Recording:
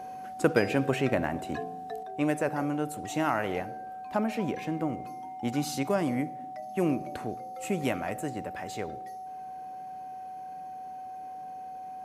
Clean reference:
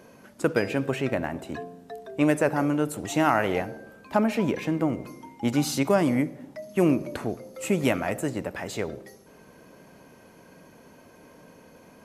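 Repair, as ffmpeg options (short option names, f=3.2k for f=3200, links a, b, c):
-af "bandreject=f=750:w=30,asetnsamples=n=441:p=0,asendcmd='2.03 volume volume 6dB',volume=0dB"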